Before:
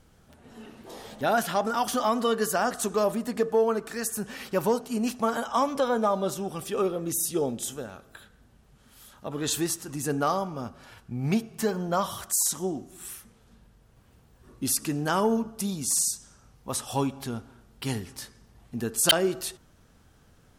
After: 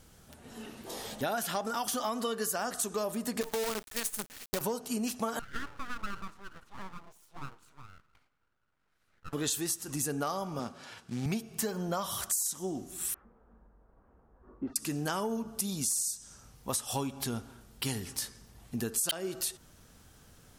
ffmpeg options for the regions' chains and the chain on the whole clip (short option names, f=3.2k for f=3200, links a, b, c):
-filter_complex "[0:a]asettb=1/sr,asplit=3[a][b][c];[a]atrim=end=3.414[d];[b]atrim=start=3.41:end=4.61,asetpts=PTS-STARTPTS,afade=t=in:d=0.004:c=qsin,afade=t=out:st=1.196:d=0.004:c=qsin,agate=range=-33dB:threshold=-33dB:ratio=3:release=100:detection=peak,acrusher=bits=5:dc=4:mix=0:aa=0.000001,acompressor=threshold=-22dB:ratio=6:attack=3.2:release=140:knee=1:detection=peak[e];[c]atrim=start=4.606[f];[d][e]acrossfade=d=0.004:c1=hsin:c2=qsin[g];[g][f]acrossfade=d=0.004:c1=qsin:c2=hsin,asettb=1/sr,asplit=3[h][i][j];[h]atrim=end=5.394[k];[i]atrim=start=5.39:end=9.33,asetpts=PTS-STARTPTS,afade=t=in:d=0.004:c=qsin,afade=t=out:st=3.936:d=0.004:c=qsin,bandpass=f=700:t=q:w=7,aeval=exprs='abs(val(0))':c=same[l];[j]atrim=start=9.326[m];[k][l]acrossfade=d=0.004:c1=hsin:c2=qsin[n];[n][m]acrossfade=d=0.004:c1=qsin:c2=hsin,asettb=1/sr,asplit=3[o][p][q];[o]atrim=end=10.594[r];[p]atrim=start=10.59:end=11.26,asetpts=PTS-STARTPTS,afade=t=in:d=0.004:c=qsin,afade=t=out:st=0.666:d=0.004:c=qsin,acrusher=bits=5:mode=log:mix=0:aa=0.000001,highpass=150,lowpass=7.1k[s];[q]atrim=start=11.256[t];[r][s]acrossfade=d=0.004:c1=hsin:c2=qsin[u];[u][t]acrossfade=d=0.004:c1=qsin:c2=hsin,asettb=1/sr,asplit=3[v][w][x];[v]atrim=end=13.144[y];[w]atrim=start=13.14:end=14.76,asetpts=PTS-STARTPTS,afade=t=in:d=0.004:c=qsin,afade=t=out:st=1.616:d=0.004:c=qsin,lowpass=f=1.3k:w=0.5412,lowpass=f=1.3k:w=1.3066,equalizer=f=120:w=1.2:g=-14.5[z];[x]atrim=start=14.756[aa];[y][z]acrossfade=d=0.004:c1=hsin:c2=qsin[ab];[ab][aa]acrossfade=d=0.004:c1=qsin:c2=hsin,highshelf=f=3.8k:g=9,acompressor=threshold=-30dB:ratio=6"